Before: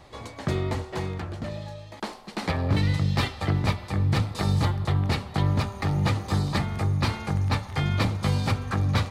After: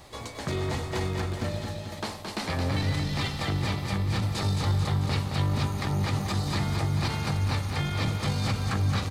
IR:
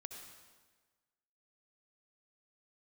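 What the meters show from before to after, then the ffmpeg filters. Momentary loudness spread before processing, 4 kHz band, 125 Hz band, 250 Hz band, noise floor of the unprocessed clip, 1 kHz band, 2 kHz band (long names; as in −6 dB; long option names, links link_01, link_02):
10 LU, +1.0 dB, −2.5 dB, −2.5 dB, −44 dBFS, −2.0 dB, −1.0 dB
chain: -filter_complex "[0:a]aemphasis=mode=production:type=50kf,acrossover=split=7200[link_01][link_02];[link_02]acompressor=threshold=-50dB:ratio=4:attack=1:release=60[link_03];[link_01][link_03]amix=inputs=2:normalize=0,alimiter=limit=-21dB:level=0:latency=1:release=13,aecho=1:1:220|440|660|880|1100|1320|1540|1760:0.531|0.313|0.185|0.109|0.0643|0.038|0.0224|0.0132"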